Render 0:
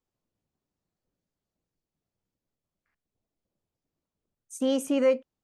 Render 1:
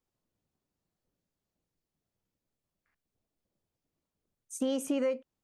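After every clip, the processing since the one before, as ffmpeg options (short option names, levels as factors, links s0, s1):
-af "acompressor=threshold=0.0447:ratio=6"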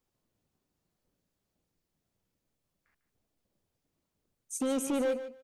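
-af "alimiter=level_in=1.06:limit=0.0631:level=0:latency=1:release=29,volume=0.944,volume=31.6,asoftclip=hard,volume=0.0316,aecho=1:1:149|298:0.251|0.0402,volume=1.58"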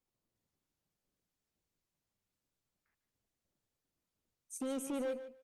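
-af "volume=0.422" -ar 48000 -c:a libopus -b:a 48k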